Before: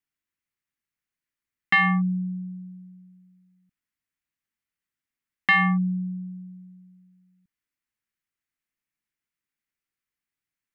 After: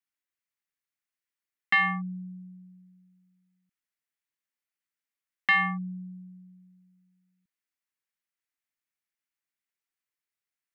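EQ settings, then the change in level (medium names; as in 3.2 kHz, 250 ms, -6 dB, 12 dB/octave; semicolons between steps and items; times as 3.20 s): bass shelf 290 Hz -11 dB; -3.0 dB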